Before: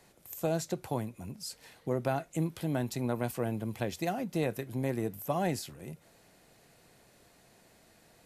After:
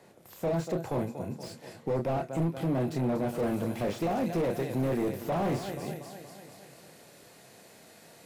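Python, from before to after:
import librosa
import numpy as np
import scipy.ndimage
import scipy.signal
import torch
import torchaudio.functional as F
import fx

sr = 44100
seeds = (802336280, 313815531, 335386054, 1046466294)

y = scipy.signal.sosfilt(scipy.signal.butter(2, 110.0, 'highpass', fs=sr, output='sos'), x)
y = fx.peak_eq(y, sr, hz=510.0, db=3.0, octaves=0.77)
y = fx.doubler(y, sr, ms=30.0, db=-7.0)
y = fx.echo_feedback(y, sr, ms=237, feedback_pct=60, wet_db=-15.5)
y = np.clip(10.0 ** (29.5 / 20.0) * y, -1.0, 1.0) / 10.0 ** (29.5 / 20.0)
y = fx.high_shelf(y, sr, hz=2400.0, db=fx.steps((0.0, -9.0), (3.38, 2.0)))
y = fx.slew_limit(y, sr, full_power_hz=16.0)
y = F.gain(torch.from_numpy(y), 5.5).numpy()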